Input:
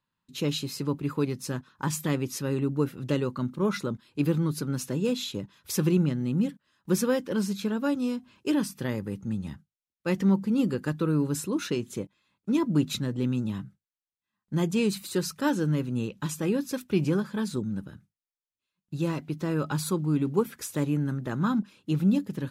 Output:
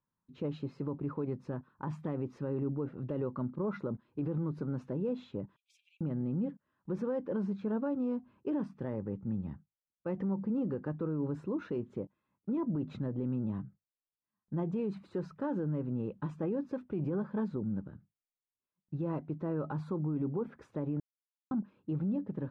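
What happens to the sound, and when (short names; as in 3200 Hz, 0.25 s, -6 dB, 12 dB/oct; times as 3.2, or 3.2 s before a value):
5.56–6.01 rippled Chebyshev high-pass 2300 Hz, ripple 6 dB
21–21.51 mute
whole clip: LPF 1100 Hz 12 dB/oct; dynamic EQ 650 Hz, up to +5 dB, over -40 dBFS, Q 0.97; limiter -23 dBFS; gain -3.5 dB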